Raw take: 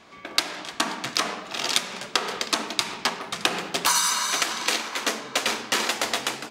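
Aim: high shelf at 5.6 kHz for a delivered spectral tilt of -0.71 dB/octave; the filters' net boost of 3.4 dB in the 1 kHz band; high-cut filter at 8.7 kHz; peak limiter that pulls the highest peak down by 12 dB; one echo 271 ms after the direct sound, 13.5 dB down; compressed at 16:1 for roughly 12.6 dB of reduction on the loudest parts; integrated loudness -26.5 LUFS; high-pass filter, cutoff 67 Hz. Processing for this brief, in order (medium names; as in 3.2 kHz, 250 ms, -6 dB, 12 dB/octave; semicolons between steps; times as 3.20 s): high-pass 67 Hz; low-pass 8.7 kHz; peaking EQ 1 kHz +4 dB; treble shelf 5.6 kHz +4 dB; compression 16:1, threshold -30 dBFS; peak limiter -20.5 dBFS; delay 271 ms -13.5 dB; trim +9 dB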